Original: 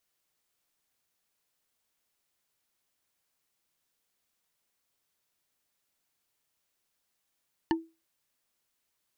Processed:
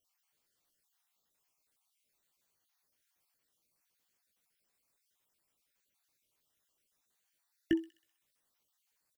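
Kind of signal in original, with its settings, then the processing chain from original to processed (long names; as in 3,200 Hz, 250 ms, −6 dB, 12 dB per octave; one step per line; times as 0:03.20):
struck wood bar, lowest mode 327 Hz, decay 0.27 s, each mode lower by 3 dB, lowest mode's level −20.5 dB
time-frequency cells dropped at random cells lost 39%
double-tracking delay 18 ms −9 dB
delay with a high-pass on its return 64 ms, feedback 59%, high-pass 4,300 Hz, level −9.5 dB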